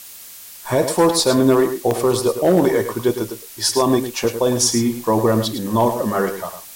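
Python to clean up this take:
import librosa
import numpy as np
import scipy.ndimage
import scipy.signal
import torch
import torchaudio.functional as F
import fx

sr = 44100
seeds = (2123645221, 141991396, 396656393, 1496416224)

y = fx.fix_interpolate(x, sr, at_s=(1.2, 1.91, 4.24), length_ms=1.2)
y = fx.noise_reduce(y, sr, print_start_s=0.14, print_end_s=0.64, reduce_db=25.0)
y = fx.fix_echo_inverse(y, sr, delay_ms=106, level_db=-9.5)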